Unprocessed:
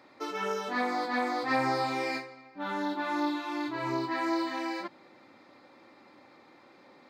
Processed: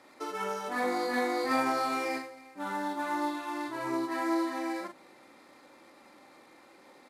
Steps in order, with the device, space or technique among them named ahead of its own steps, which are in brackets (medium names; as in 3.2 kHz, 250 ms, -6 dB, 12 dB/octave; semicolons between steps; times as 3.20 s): high-pass 52 Hz 12 dB/octave; 0.82–2.05 s: flutter echo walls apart 3.4 m, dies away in 0.38 s; doubling 42 ms -7 dB; dynamic bell 3.5 kHz, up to -6 dB, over -48 dBFS, Q 0.71; early wireless headset (high-pass 190 Hz 6 dB/octave; CVSD coder 64 kbps)